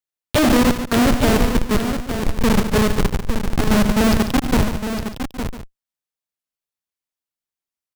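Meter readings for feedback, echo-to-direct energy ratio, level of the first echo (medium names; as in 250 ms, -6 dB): no regular repeats, -5.0 dB, -14.5 dB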